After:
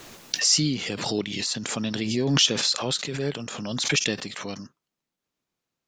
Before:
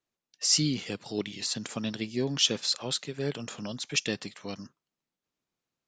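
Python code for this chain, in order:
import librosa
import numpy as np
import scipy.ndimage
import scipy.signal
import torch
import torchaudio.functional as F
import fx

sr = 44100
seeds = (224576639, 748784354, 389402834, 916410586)

y = fx.pre_swell(x, sr, db_per_s=35.0)
y = F.gain(torch.from_numpy(y), 3.0).numpy()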